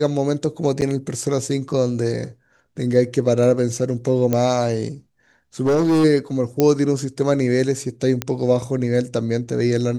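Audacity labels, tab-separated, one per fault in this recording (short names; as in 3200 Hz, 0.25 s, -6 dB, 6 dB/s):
0.810000	0.820000	gap 9.1 ms
4.330000	4.330000	pop -7 dBFS
5.650000	6.050000	clipped -13.5 dBFS
6.600000	6.600000	pop -4 dBFS
8.220000	8.220000	pop -6 dBFS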